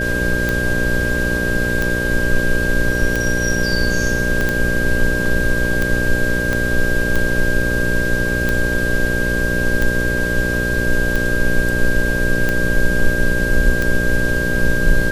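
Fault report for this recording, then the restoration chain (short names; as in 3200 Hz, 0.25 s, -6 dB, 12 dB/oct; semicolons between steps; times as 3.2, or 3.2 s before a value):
buzz 60 Hz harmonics 10 -22 dBFS
tick 45 rpm
tone 1600 Hz -20 dBFS
4.41 pop -8 dBFS
6.53 pop -7 dBFS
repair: de-click; de-hum 60 Hz, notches 10; notch 1600 Hz, Q 30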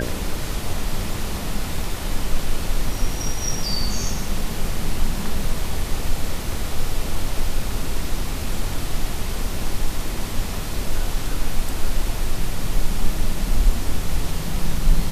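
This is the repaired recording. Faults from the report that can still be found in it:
4.41 pop
6.53 pop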